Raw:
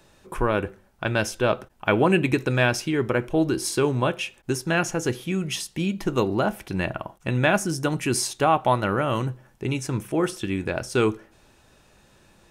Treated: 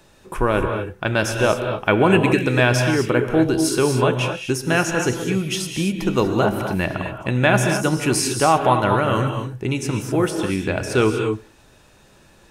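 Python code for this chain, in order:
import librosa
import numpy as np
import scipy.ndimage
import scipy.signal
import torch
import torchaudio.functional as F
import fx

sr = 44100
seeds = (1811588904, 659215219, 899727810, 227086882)

y = fx.rev_gated(x, sr, seeds[0], gate_ms=270, shape='rising', drr_db=5.0)
y = y * librosa.db_to_amplitude(3.5)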